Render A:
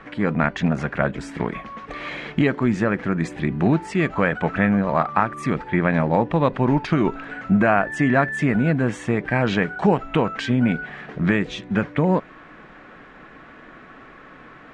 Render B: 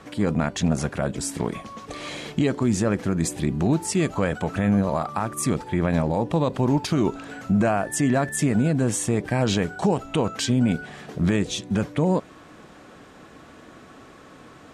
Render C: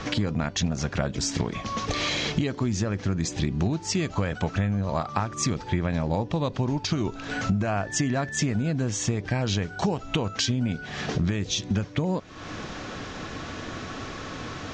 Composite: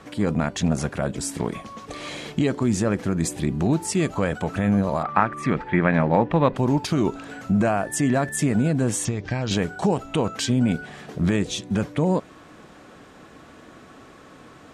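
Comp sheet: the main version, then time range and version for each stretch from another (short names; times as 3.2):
B
5.03–6.56 from A
9.05–9.51 from C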